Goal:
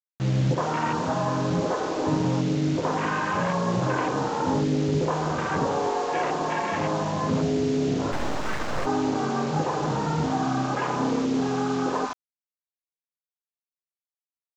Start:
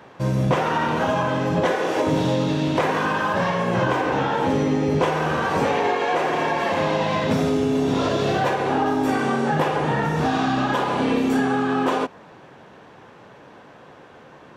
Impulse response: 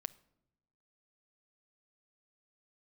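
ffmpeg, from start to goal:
-filter_complex "[0:a]acrossover=split=570[a][b];[b]adelay=70[c];[a][c]amix=inputs=2:normalize=0[d];[1:a]atrim=start_sample=2205,afade=t=out:st=0.36:d=0.01,atrim=end_sample=16317[e];[d][e]afir=irnorm=-1:irlink=0,afwtdn=0.0447,acrusher=bits=5:mix=0:aa=0.000001,aresample=16000,aresample=44100,asplit=3[f][g][h];[f]afade=t=out:st=8.11:d=0.02[i];[g]aeval=exprs='abs(val(0))':c=same,afade=t=in:st=8.11:d=0.02,afade=t=out:st=8.85:d=0.02[j];[h]afade=t=in:st=8.85:d=0.02[k];[i][j][k]amix=inputs=3:normalize=0"

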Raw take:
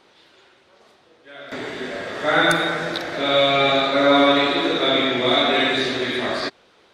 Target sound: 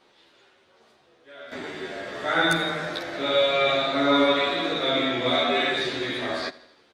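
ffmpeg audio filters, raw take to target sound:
-filter_complex "[0:a]aecho=1:1:83|166|249|332|415:0.1|0.059|0.0348|0.0205|0.0121,asplit=2[a][b];[b]adelay=11.3,afreqshift=-1[c];[a][c]amix=inputs=2:normalize=1,volume=-2dB"

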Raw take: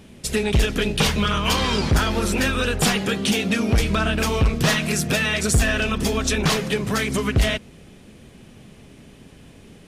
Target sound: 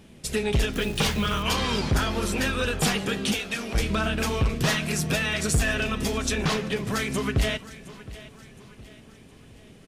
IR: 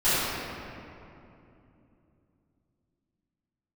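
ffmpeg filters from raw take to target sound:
-filter_complex "[0:a]asettb=1/sr,asplit=3[a][b][c];[a]atrim=end=3.344[d];[b]atrim=start=3.34:end=3.75,asetpts=PTS-STARTPTS,afade=t=in:d=0.004:c=qsin,afade=t=out:st=0.406:d=0.004:c=qsin,highpass=f=870:p=1[e];[c]atrim=start=3.746[f];[d][e]acrossfade=d=0.004:c1=hsin:c2=qsin[g];[g][f]acrossfade=d=0.004:c1=qsin:c2=hsin,asettb=1/sr,asplit=3[h][i][j];[h]atrim=end=6.324[k];[i]atrim=start=6.32:end=6.87,asetpts=PTS-STARTPTS,afade=t=in:d=0.004:c=qsin,afade=t=out:st=0.546:d=0.004:c=qsin,highshelf=f=8.4k:g=-11.5[l];[j]atrim=start=6.866[m];[k][l]acrossfade=d=0.004:c1=hsin:c2=qsin[n];[n][m]acrossfade=d=0.004:c1=qsin:c2=hsin,aecho=1:1:716|1432|2148|2864:0.133|0.06|0.027|0.0122,asettb=1/sr,asplit=3[o][p][q];[o]atrim=end=0.734[r];[p]atrim=start=0.73:end=1.43,asetpts=PTS-STARTPTS,afade=t=in:d=0.004:c=qsin,afade=t=out:st=0.696:d=0.004:c=qsin,acrusher=bits=7:dc=4:mix=0:aa=0.000001[s];[q]atrim=start=1.426[t];[r][s]acrossfade=d=0.004:c1=hsin:c2=qsin[u];[u][t]acrossfade=d=0.004:c1=qsin:c2=hsin,flanger=delay=5.8:depth=3.6:regen=84:speed=0.38:shape=triangular"

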